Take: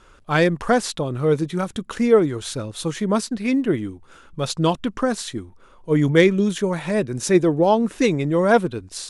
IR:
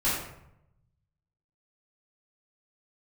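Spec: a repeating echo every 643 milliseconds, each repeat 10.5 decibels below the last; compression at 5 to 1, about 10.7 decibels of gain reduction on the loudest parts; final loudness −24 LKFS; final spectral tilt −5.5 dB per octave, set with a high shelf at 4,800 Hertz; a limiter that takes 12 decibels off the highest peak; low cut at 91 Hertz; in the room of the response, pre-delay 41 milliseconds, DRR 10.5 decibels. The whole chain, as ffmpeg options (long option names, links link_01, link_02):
-filter_complex "[0:a]highpass=91,highshelf=frequency=4800:gain=-8,acompressor=threshold=-22dB:ratio=5,alimiter=limit=-22.5dB:level=0:latency=1,aecho=1:1:643|1286|1929:0.299|0.0896|0.0269,asplit=2[link_01][link_02];[1:a]atrim=start_sample=2205,adelay=41[link_03];[link_02][link_03]afir=irnorm=-1:irlink=0,volume=-22dB[link_04];[link_01][link_04]amix=inputs=2:normalize=0,volume=7dB"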